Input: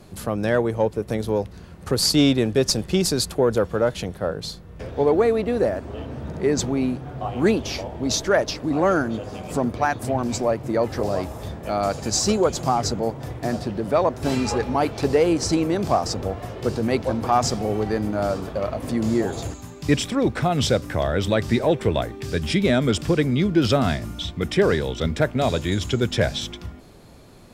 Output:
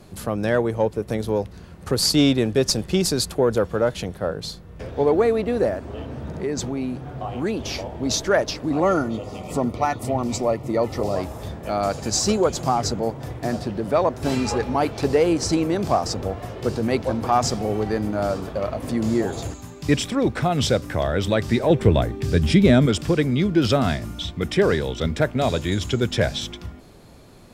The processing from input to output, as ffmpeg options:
ffmpeg -i in.wav -filter_complex "[0:a]asettb=1/sr,asplit=3[link_01][link_02][link_03];[link_01]atrim=end=5.744[link_04];[link_02]atrim=start=5.74:end=7.6,asetpts=PTS-STARTPTS,afade=type=in:duration=0.004:curve=qsin,afade=type=out:start_time=1.856:duration=0.004:curve=qsin,acompressor=threshold=-25dB:ratio=2:attack=3.2:release=140:knee=1:detection=peak[link_05];[link_03]atrim=start=7.596[link_06];[link_04][link_05]acrossfade=duration=0.004:curve1=hsin:curve2=qsin[link_07];[link_07][link_06]acrossfade=duration=0.004:curve1=qsin:curve2=hsin,asettb=1/sr,asplit=3[link_08][link_09][link_10];[link_08]atrim=end=8.804[link_11];[link_09]atrim=start=8.8:end=11.16,asetpts=PTS-STARTPTS,afade=type=in:duration=0.004:curve=qsin,afade=type=out:start_time=2.356:duration=0.004:curve=qsin,asuperstop=centerf=1600:order=20:qfactor=5.7[link_12];[link_10]atrim=start=11.156[link_13];[link_11][link_12]acrossfade=duration=0.004:curve1=hsin:curve2=qsin[link_14];[link_14][link_13]acrossfade=duration=0.004:curve1=qsin:curve2=hsin,asettb=1/sr,asplit=3[link_15][link_16][link_17];[link_15]atrim=end=21.704[link_18];[link_16]atrim=start=21.7:end=22.86,asetpts=PTS-STARTPTS,afade=type=in:duration=0.004:curve=qsin,afade=type=out:start_time=1.156:duration=0.004:curve=qsin,lowshelf=frequency=330:gain=8.5[link_19];[link_17]atrim=start=22.856[link_20];[link_18][link_19]acrossfade=duration=0.004:curve1=hsin:curve2=qsin[link_21];[link_21][link_20]acrossfade=duration=0.004:curve1=qsin:curve2=hsin" out.wav

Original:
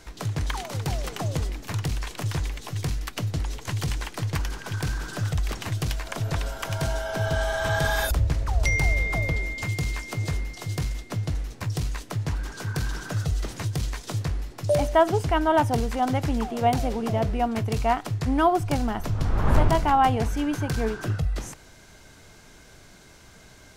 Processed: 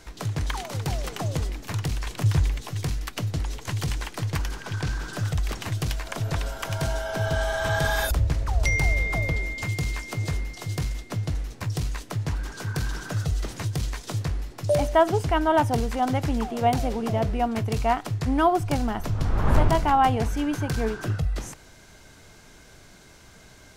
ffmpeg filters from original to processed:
ffmpeg -i in.wav -filter_complex "[0:a]asettb=1/sr,asplit=3[link_01][link_02][link_03];[link_01]atrim=end=2.064[link_04];[link_02]atrim=start=2.06:end=2.63,asetpts=PTS-STARTPTS,afade=type=in:duration=0.004:curve=qsin,afade=type=out:start_time=0.566:duration=0.004:curve=qsin,equalizer=frequency=83:width=0.53:gain=8[link_05];[link_03]atrim=start=2.626[link_06];[link_04][link_05]acrossfade=duration=0.004:curve1=hsin:curve2=qsin[link_07];[link_07][link_06]acrossfade=duration=0.004:curve1=qsin:curve2=hsin,asettb=1/sr,asplit=3[link_08][link_09][link_10];[link_08]atrim=end=4.594[link_11];[link_09]atrim=start=4.59:end=5.13,asetpts=PTS-STARTPTS,afade=type=in:duration=0.004:curve=qsin,afade=type=out:start_time=0.536:duration=0.004:curve=qsin,acrossover=split=7500[link_12][link_13];[link_13]acompressor=threshold=-55dB:ratio=4:attack=1:release=60[link_14];[link_12][link_14]amix=inputs=2:normalize=0[link_15];[link_10]atrim=start=5.126[link_16];[link_11][link_15]acrossfade=duration=0.004:curve1=hsin:curve2=qsin[link_17];[link_17][link_16]acrossfade=duration=0.004:curve1=qsin:curve2=hsin" out.wav

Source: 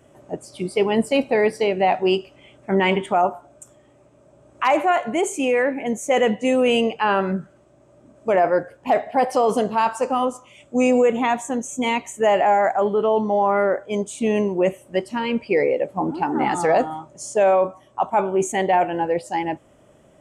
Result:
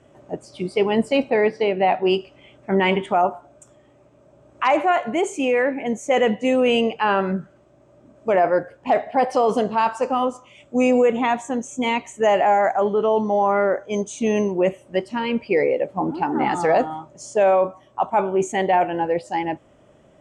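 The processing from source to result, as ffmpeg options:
ffmpeg -i in.wav -filter_complex "[0:a]asplit=3[link_01][link_02][link_03];[link_01]afade=type=out:start_time=1.29:duration=0.02[link_04];[link_02]highpass=110,lowpass=4000,afade=type=in:start_time=1.29:duration=0.02,afade=type=out:start_time=2.08:duration=0.02[link_05];[link_03]afade=type=in:start_time=2.08:duration=0.02[link_06];[link_04][link_05][link_06]amix=inputs=3:normalize=0,asettb=1/sr,asplit=3[link_07][link_08][link_09];[link_07]atrim=end=12.224[link_10];[link_08]atrim=start=12.22:end=14.51,asetpts=PTS-STARTPTS,afade=type=in:duration=0.004:curve=qsin,afade=type=out:start_time=2.286:duration=0.004:curve=qsin,equalizer=frequency=6200:width=7.5:gain=13.5[link_11];[link_09]atrim=start=14.506[link_12];[link_10][link_11]acrossfade=duration=0.004:curve1=hsin:curve2=qsin[link_13];[link_13][link_12]acrossfade=duration=0.004:curve1=qsin:curve2=hsin,lowpass=6300" out.wav

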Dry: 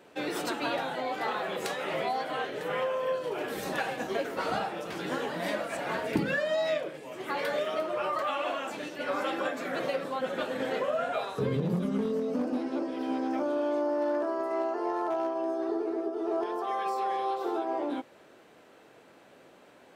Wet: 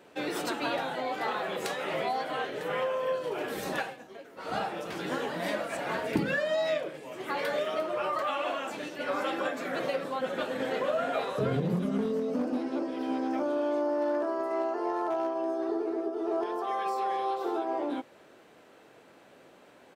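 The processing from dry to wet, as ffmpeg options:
ffmpeg -i in.wav -filter_complex "[0:a]asplit=2[link_01][link_02];[link_02]afade=type=in:start_time=10.32:duration=0.01,afade=type=out:start_time=11.12:duration=0.01,aecho=0:1:470|940|1410|1880:0.446684|0.134005|0.0402015|0.0120605[link_03];[link_01][link_03]amix=inputs=2:normalize=0,asplit=3[link_04][link_05][link_06];[link_04]atrim=end=4.06,asetpts=PTS-STARTPTS,afade=type=out:start_time=3.78:duration=0.28:curve=qua:silence=0.16788[link_07];[link_05]atrim=start=4.06:end=4.3,asetpts=PTS-STARTPTS,volume=-15.5dB[link_08];[link_06]atrim=start=4.3,asetpts=PTS-STARTPTS,afade=type=in:duration=0.28:curve=qua:silence=0.16788[link_09];[link_07][link_08][link_09]concat=n=3:v=0:a=1" out.wav

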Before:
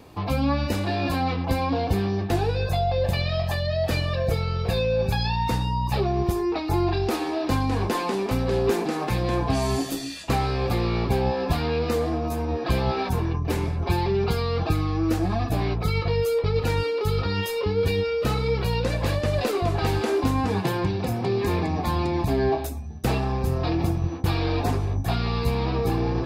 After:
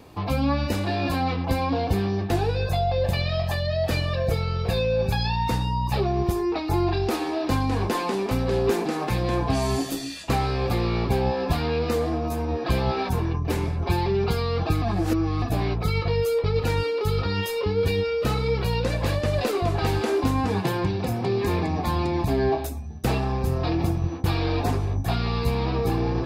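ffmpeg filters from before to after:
ffmpeg -i in.wav -filter_complex "[0:a]asplit=3[link_01][link_02][link_03];[link_01]atrim=end=14.822[link_04];[link_02]atrim=start=14.818:end=15.422,asetpts=PTS-STARTPTS,areverse[link_05];[link_03]atrim=start=15.418[link_06];[link_04][link_05]acrossfade=duration=0.004:curve1=hsin:curve2=hsin[link_07];[link_07][link_06]acrossfade=duration=0.004:curve1=hsin:curve2=hsin" out.wav

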